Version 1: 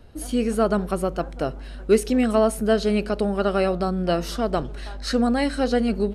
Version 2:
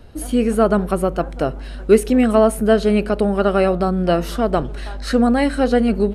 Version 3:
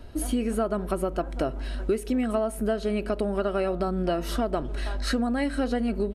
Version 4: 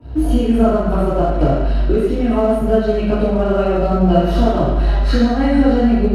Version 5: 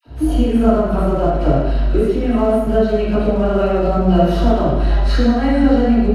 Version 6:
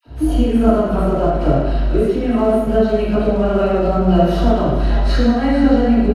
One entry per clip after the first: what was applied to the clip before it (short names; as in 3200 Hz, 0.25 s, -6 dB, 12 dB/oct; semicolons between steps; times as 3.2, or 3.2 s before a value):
dynamic EQ 5300 Hz, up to -8 dB, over -49 dBFS, Q 1.1; gain +5.5 dB
comb 3.1 ms, depth 31%; compressor, threshold -21 dBFS, peak gain reduction 14 dB; gain -2 dB
reverb RT60 1.1 s, pre-delay 3 ms, DRR -11 dB; in parallel at -3.5 dB: crossover distortion -18.5 dBFS; on the sum: gain -18 dB
dispersion lows, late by 58 ms, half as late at 960 Hz
echo 0.452 s -14 dB